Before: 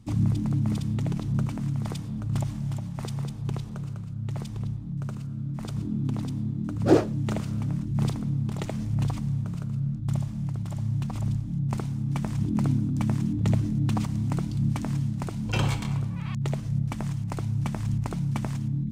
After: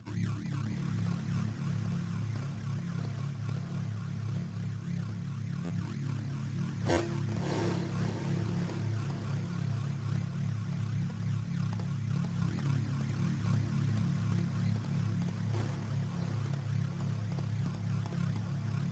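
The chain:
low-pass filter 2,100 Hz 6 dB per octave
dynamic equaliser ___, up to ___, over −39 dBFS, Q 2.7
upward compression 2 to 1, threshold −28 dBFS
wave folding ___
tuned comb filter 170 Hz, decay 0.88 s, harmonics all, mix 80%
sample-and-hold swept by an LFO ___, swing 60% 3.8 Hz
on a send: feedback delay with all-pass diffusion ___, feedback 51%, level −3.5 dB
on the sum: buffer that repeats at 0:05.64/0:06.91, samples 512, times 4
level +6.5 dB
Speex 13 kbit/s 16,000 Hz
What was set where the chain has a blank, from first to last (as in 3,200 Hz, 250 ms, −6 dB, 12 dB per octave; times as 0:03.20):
230 Hz, −4 dB, −10.5 dBFS, 28×, 667 ms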